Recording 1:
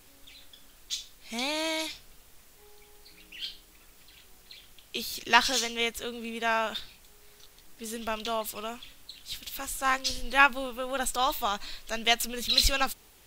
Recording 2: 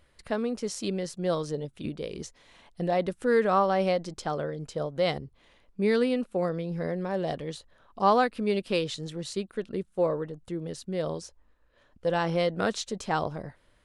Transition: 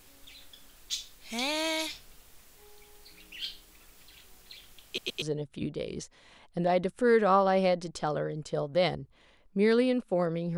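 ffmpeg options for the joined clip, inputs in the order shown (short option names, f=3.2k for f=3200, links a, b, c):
-filter_complex "[0:a]apad=whole_dur=10.57,atrim=end=10.57,asplit=3[a][b][c];[a]atrim=end=4.982[d];[b]atrim=start=4.858:end=4.982[e];[c]atrim=start=4.858:end=4.982[f];[1:a]atrim=start=1.448:end=6.8[g];[d][e]acrossfade=d=0.004:c1=hsin:c2=hsin[h];[h][f]acrossfade=d=0.004:c1=hsin:c2=hsin[i];[i][g]acrossfade=d=0.004:c1=hsin:c2=hsin"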